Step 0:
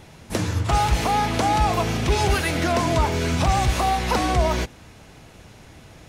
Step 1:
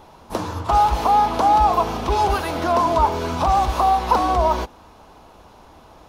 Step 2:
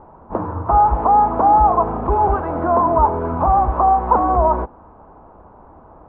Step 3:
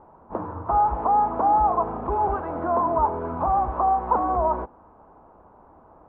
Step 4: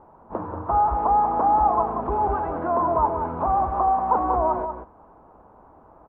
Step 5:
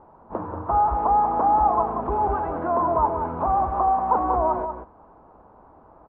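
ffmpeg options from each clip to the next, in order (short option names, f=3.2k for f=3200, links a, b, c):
-af "equalizer=f=125:t=o:w=1:g=-12,equalizer=f=1k:t=o:w=1:g=11,equalizer=f=2k:t=o:w=1:g=-10,equalizer=f=8k:t=o:w=1:g=-9"
-af "lowpass=f=1.3k:w=0.5412,lowpass=f=1.3k:w=1.3066,volume=3dB"
-af "lowshelf=f=130:g=-6,volume=-6.5dB"
-filter_complex "[0:a]asplit=2[a][b];[b]adelay=186.6,volume=-7dB,highshelf=f=4k:g=-4.2[c];[a][c]amix=inputs=2:normalize=0"
-af "aresample=11025,aresample=44100"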